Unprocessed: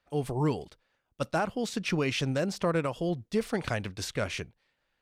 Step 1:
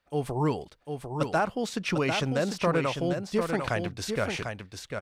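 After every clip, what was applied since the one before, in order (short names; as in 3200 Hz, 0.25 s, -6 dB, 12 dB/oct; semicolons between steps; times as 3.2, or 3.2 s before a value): dynamic EQ 1000 Hz, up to +4 dB, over -44 dBFS, Q 0.71; echo 0.748 s -6 dB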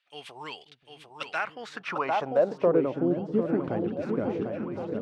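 band-pass sweep 3000 Hz -> 290 Hz, 1.16–3; repeats that get brighter 0.534 s, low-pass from 200 Hz, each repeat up 1 oct, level -6 dB; gain +8 dB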